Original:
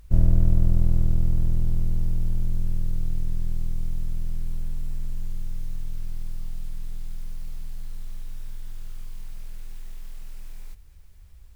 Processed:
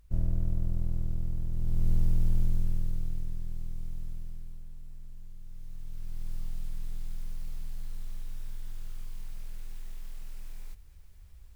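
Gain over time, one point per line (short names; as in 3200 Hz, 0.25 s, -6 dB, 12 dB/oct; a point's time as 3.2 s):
1.5 s -10.5 dB
1.9 s -1 dB
2.4 s -1 dB
3.44 s -9.5 dB
4.08 s -9.5 dB
4.65 s -16 dB
5.39 s -16 dB
6.34 s -3 dB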